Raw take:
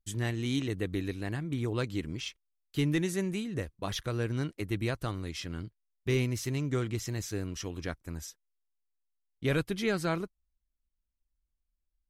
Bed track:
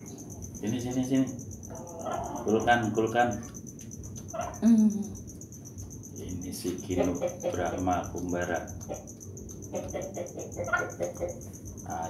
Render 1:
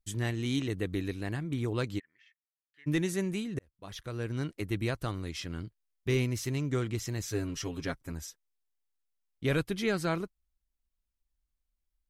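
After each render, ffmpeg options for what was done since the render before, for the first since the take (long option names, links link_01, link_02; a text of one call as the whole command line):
ffmpeg -i in.wav -filter_complex "[0:a]asplit=3[link_01][link_02][link_03];[link_01]afade=type=out:start_time=1.98:duration=0.02[link_04];[link_02]bandpass=frequency=1800:width_type=q:width=18,afade=type=in:start_time=1.98:duration=0.02,afade=type=out:start_time=2.86:duration=0.02[link_05];[link_03]afade=type=in:start_time=2.86:duration=0.02[link_06];[link_04][link_05][link_06]amix=inputs=3:normalize=0,asettb=1/sr,asplit=3[link_07][link_08][link_09];[link_07]atrim=end=7.274[link_10];[link_08]atrim=start=7.27:end=8.12,asetpts=PTS-STARTPTS,afade=type=in:duration=0.004:curve=qsin,afade=type=out:start_time=0.846:duration=0.004:curve=qsin,aecho=1:1:7.4:0.77,atrim=end_sample=37485[link_11];[link_09]atrim=start=8.116[link_12];[link_10][link_11]acrossfade=duration=0.004:curve1=hsin:curve2=qsin[link_13];[link_13][link_12]acrossfade=duration=0.004:curve1=qsin:curve2=hsin,asplit=2[link_14][link_15];[link_14]atrim=end=3.59,asetpts=PTS-STARTPTS,afade=type=out:start_time=3.586:duration=0.004:curve=hsin[link_16];[link_15]atrim=start=3.59,asetpts=PTS-STARTPTS,afade=type=in:duration=0.95[link_17];[link_16][link_17]concat=n=2:v=0:a=1" out.wav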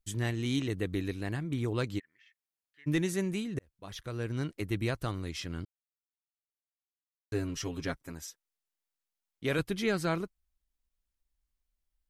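ffmpeg -i in.wav -filter_complex "[0:a]asettb=1/sr,asplit=3[link_01][link_02][link_03];[link_01]atrim=end=7.964[link_04];[link_02]atrim=start=7.96:end=9.59,asetpts=PTS-STARTPTS,afade=type=in:duration=0.004:curve=qsin,afade=type=out:start_time=1.626:duration=0.004:curve=qsin,lowshelf=frequency=130:gain=-12[link_05];[link_03]atrim=start=9.586[link_06];[link_04][link_05]acrossfade=duration=0.004:curve1=hsin:curve2=qsin[link_07];[link_07][link_06]acrossfade=duration=0.004:curve1=qsin:curve2=hsin,asplit=3[link_08][link_09][link_10];[link_08]atrim=end=5.65,asetpts=PTS-STARTPTS,afade=type=out:start_time=5.646:duration=0.004:curve=hsin[link_11];[link_09]atrim=start=5.65:end=7.32,asetpts=PTS-STARTPTS,volume=0[link_12];[link_10]atrim=start=7.32,asetpts=PTS-STARTPTS,afade=type=in:duration=0.004:curve=hsin[link_13];[link_11][link_12][link_13]concat=n=3:v=0:a=1" out.wav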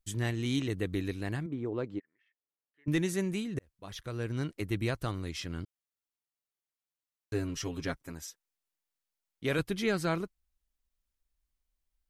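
ffmpeg -i in.wav -filter_complex "[0:a]asettb=1/sr,asplit=3[link_01][link_02][link_03];[link_01]atrim=end=1.464[link_04];[link_02]atrim=start=1.46:end=2.88,asetpts=PTS-STARTPTS,afade=type=in:duration=0.004:curve=qsin,afade=type=out:start_time=1.416:duration=0.004:curve=qsin,bandpass=frequency=430:width_type=q:width=0.71[link_05];[link_03]atrim=start=2.876[link_06];[link_04][link_05]acrossfade=duration=0.004:curve1=hsin:curve2=qsin[link_07];[link_07][link_06]acrossfade=duration=0.004:curve1=qsin:curve2=hsin" out.wav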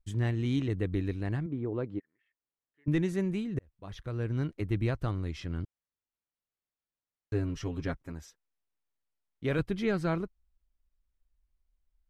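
ffmpeg -i in.wav -af "lowpass=frequency=1900:poles=1,lowshelf=frequency=110:gain=8.5" out.wav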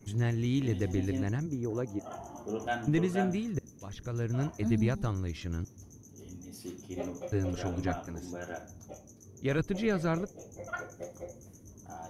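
ffmpeg -i in.wav -i bed.wav -filter_complex "[1:a]volume=-10dB[link_01];[0:a][link_01]amix=inputs=2:normalize=0" out.wav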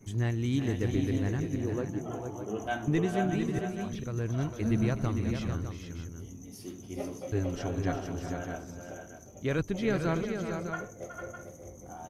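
ffmpeg -i in.wav -af "aecho=1:1:369|450|606:0.282|0.447|0.316" out.wav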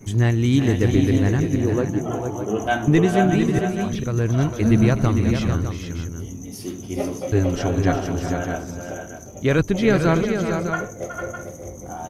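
ffmpeg -i in.wav -af "volume=11.5dB" out.wav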